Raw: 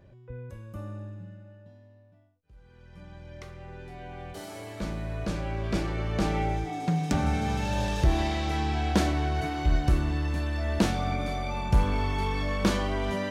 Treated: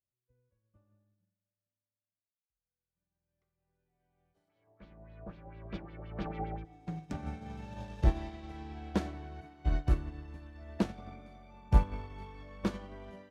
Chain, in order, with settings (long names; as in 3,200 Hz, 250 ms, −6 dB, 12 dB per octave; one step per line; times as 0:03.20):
high-shelf EQ 3,100 Hz −8.5 dB
feedback echo with a low-pass in the loop 91 ms, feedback 80%, level −15.5 dB
0:04.48–0:06.64: auto-filter low-pass sine 2.9 Hz → 9 Hz 710–3,900 Hz
expander for the loud parts 2.5 to 1, over −46 dBFS